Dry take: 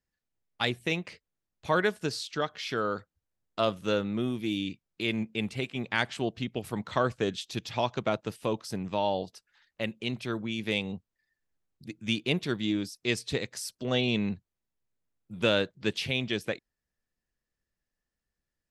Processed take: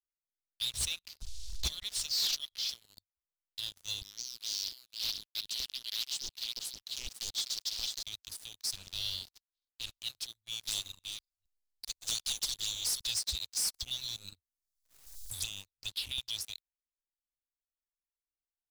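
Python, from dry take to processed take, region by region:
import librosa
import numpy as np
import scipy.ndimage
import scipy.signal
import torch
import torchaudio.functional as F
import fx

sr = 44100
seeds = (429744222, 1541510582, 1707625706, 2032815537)

y = fx.chain(x, sr, fx.lowpass(hz=5200.0, slope=12),
    fx.peak_eq(hz=1600.0, db=11.5, octaves=0.56),
    fx.pre_swell(db_per_s=52.0), at=(0.7, 2.69))
y = fx.chain(y, sr, fx.weighting(curve='A'),
    fx.echo_single(ms=495, db=-6.5),
    fx.doppler_dist(depth_ms=0.62), at=(4.01, 8.03))
y = fx.spec_flatten(y, sr, power=0.51, at=(8.7, 9.99), fade=0.02)
y = fx.lowpass(y, sr, hz=3300.0, slope=12, at=(8.7, 9.99), fade=0.02)
y = fx.chain(y, sr, fx.reverse_delay(ms=259, wet_db=-14),
    fx.env_flanger(rest_ms=8.0, full_db=-25.5),
    fx.spectral_comp(ratio=2.0), at=(10.67, 13.07))
y = fx.chain(y, sr, fx.env_phaser(low_hz=290.0, high_hz=4100.0, full_db=-21.5),
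    fx.band_squash(depth_pct=100), at=(13.74, 16.18))
y = scipy.signal.sosfilt(scipy.signal.cheby2(4, 50, [150.0, 1700.0], 'bandstop', fs=sr, output='sos'), y)
y = fx.leveller(y, sr, passes=5)
y = y * 10.0 ** (-8.0 / 20.0)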